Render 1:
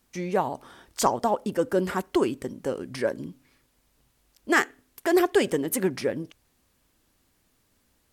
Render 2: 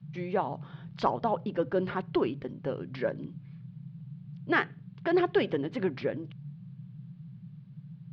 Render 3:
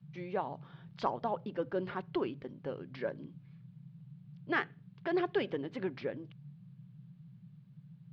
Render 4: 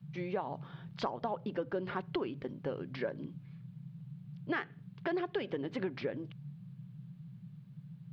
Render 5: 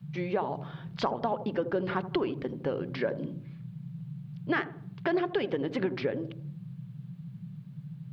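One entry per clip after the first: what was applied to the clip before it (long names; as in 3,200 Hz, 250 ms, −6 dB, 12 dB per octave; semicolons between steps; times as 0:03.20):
Butterworth low-pass 4,100 Hz 36 dB per octave; notch filter 1,900 Hz, Q 30; noise in a band 120–180 Hz −40 dBFS; level −4.5 dB
low-shelf EQ 200 Hz −4 dB; level −5.5 dB
downward compressor 6 to 1, threshold −36 dBFS, peak gain reduction 10 dB; level +4.5 dB
delay with a low-pass on its return 80 ms, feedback 40%, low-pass 690 Hz, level −8.5 dB; level +6 dB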